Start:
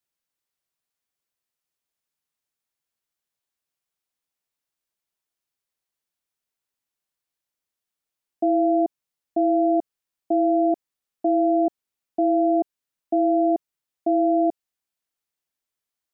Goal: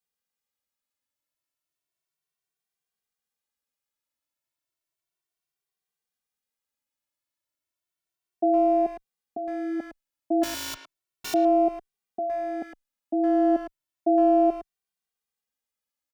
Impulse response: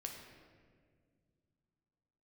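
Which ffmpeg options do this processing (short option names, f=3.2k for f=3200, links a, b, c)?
-filter_complex "[0:a]asettb=1/sr,asplit=3[a][b][c];[a]atrim=end=10.434[d];[b]atrim=start=10.43:end=11.34,asetpts=PTS-STARTPTS,afade=t=in:d=0.004:c=qsin,afade=t=out:st=0.906:d=0.004:c=qsin,aeval=exprs='(mod(20*val(0)+1,2)-1)/20':c=same[e];[c]atrim=start=11.336[f];[d][e]acrossfade=d=0.004:c1=hsin:c2=qsin[g];[g][f]acrossfade=d=0.004:c1=qsin:c2=hsin,asplit=2[h][i];[i]adelay=110,highpass=300,lowpass=3.4k,asoftclip=type=hard:threshold=-22dB,volume=-9dB[j];[h][j]amix=inputs=2:normalize=0,asplit=2[k][l];[l]adelay=2.1,afreqshift=0.33[m];[k][m]amix=inputs=2:normalize=1"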